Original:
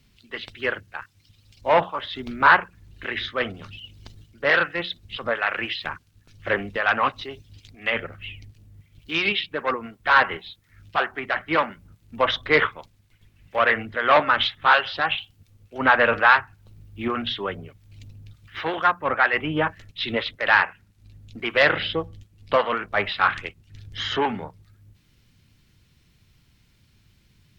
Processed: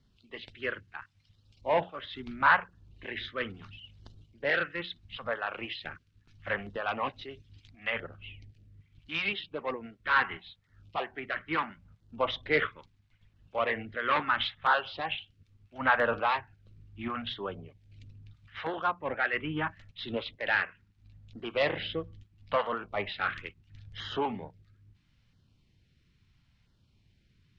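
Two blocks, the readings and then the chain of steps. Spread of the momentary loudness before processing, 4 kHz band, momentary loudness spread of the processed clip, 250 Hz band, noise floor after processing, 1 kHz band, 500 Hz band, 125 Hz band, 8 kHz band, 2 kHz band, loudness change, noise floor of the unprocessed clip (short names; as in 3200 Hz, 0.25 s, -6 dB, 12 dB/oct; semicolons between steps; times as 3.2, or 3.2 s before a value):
18 LU, -10.0 dB, 19 LU, -8.0 dB, -69 dBFS, -9.0 dB, -8.5 dB, -7.0 dB, n/a, -9.5 dB, -9.5 dB, -61 dBFS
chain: Bessel low-pass 4000 Hz, order 2; LFO notch saw down 0.75 Hz 290–2600 Hz; gain -7 dB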